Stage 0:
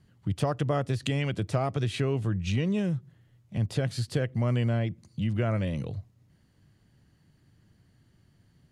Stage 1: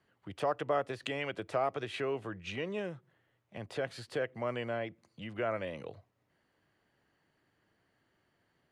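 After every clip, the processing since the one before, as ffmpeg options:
-filter_complex "[0:a]acrossover=split=360 2900:gain=0.0891 1 0.251[a][b][c];[a][b][c]amix=inputs=3:normalize=0"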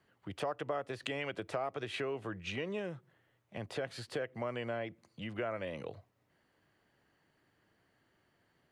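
-af "acompressor=threshold=-36dB:ratio=3,volume=1.5dB"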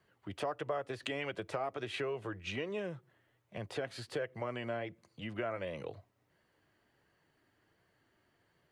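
-af "flanger=delay=1.8:depth=1.4:regen=-62:speed=1.4:shape=sinusoidal,volume=4dB"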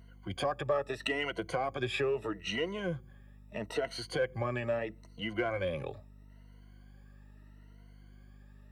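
-filter_complex "[0:a]afftfilt=real='re*pow(10,17/40*sin(2*PI*(1.9*log(max(b,1)*sr/1024/100)/log(2)-(0.77)*(pts-256)/sr)))':imag='im*pow(10,17/40*sin(2*PI*(1.9*log(max(b,1)*sr/1024/100)/log(2)-(0.77)*(pts-256)/sr)))':win_size=1024:overlap=0.75,asplit=2[a][b];[b]asoftclip=type=hard:threshold=-30.5dB,volume=-12dB[c];[a][c]amix=inputs=2:normalize=0,aeval=exprs='val(0)+0.00224*(sin(2*PI*50*n/s)+sin(2*PI*2*50*n/s)/2+sin(2*PI*3*50*n/s)/3+sin(2*PI*4*50*n/s)/4+sin(2*PI*5*50*n/s)/5)':c=same"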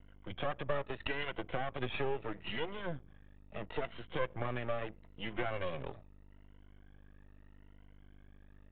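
-af "aeval=exprs='max(val(0),0)':c=same,aresample=8000,aresample=44100"

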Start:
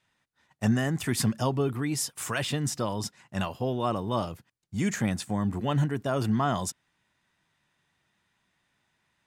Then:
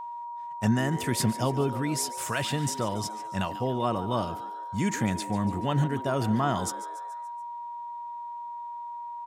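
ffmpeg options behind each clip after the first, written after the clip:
-filter_complex "[0:a]asplit=6[a][b][c][d][e][f];[b]adelay=143,afreqshift=110,volume=-15dB[g];[c]adelay=286,afreqshift=220,volume=-20.2dB[h];[d]adelay=429,afreqshift=330,volume=-25.4dB[i];[e]adelay=572,afreqshift=440,volume=-30.6dB[j];[f]adelay=715,afreqshift=550,volume=-35.8dB[k];[a][g][h][i][j][k]amix=inputs=6:normalize=0,aeval=exprs='val(0)+0.0178*sin(2*PI*950*n/s)':c=same"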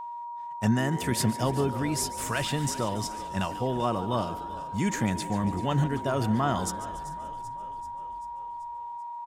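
-filter_complex "[0:a]asplit=7[a][b][c][d][e][f][g];[b]adelay=387,afreqshift=-34,volume=-16.5dB[h];[c]adelay=774,afreqshift=-68,volume=-20.8dB[i];[d]adelay=1161,afreqshift=-102,volume=-25.1dB[j];[e]adelay=1548,afreqshift=-136,volume=-29.4dB[k];[f]adelay=1935,afreqshift=-170,volume=-33.7dB[l];[g]adelay=2322,afreqshift=-204,volume=-38dB[m];[a][h][i][j][k][l][m]amix=inputs=7:normalize=0"

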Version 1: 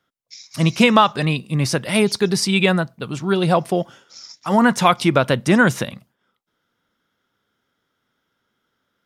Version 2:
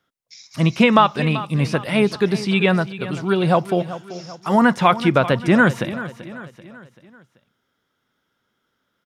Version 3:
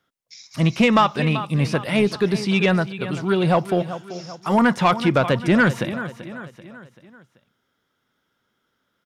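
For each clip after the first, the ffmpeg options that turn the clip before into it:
-filter_complex "[0:a]acrossover=split=3500[a][b];[b]acompressor=threshold=-40dB:ratio=4:attack=1:release=60[c];[a][c]amix=inputs=2:normalize=0,aecho=1:1:386|772|1158|1544:0.188|0.0885|0.0416|0.0196"
-af "asoftclip=type=tanh:threshold=-8.5dB"

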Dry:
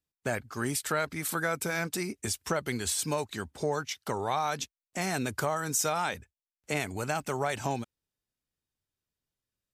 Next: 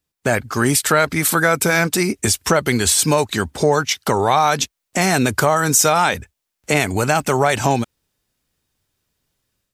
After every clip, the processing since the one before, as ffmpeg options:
-filter_complex "[0:a]dynaudnorm=f=160:g=3:m=7dB,asplit=2[a][b];[b]alimiter=limit=-18.5dB:level=0:latency=1:release=189,volume=-1dB[c];[a][c]amix=inputs=2:normalize=0,volume=4.5dB"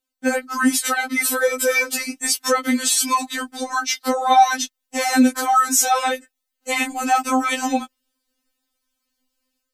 -af "afftfilt=real='re*3.46*eq(mod(b,12),0)':imag='im*3.46*eq(mod(b,12),0)':win_size=2048:overlap=0.75"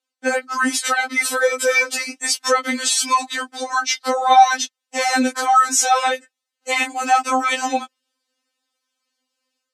-af "highpass=390,lowpass=7.6k,volume=2.5dB"

